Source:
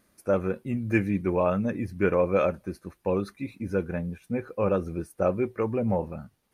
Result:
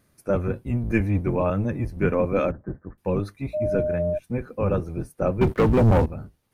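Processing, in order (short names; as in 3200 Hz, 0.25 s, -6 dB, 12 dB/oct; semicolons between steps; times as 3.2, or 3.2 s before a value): octaver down 1 oct, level +2 dB; 2.51–2.98 elliptic low-pass 1800 Hz, stop band 40 dB; 3.53–4.17 whine 610 Hz -22 dBFS; 5.41–6.06 sample leveller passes 3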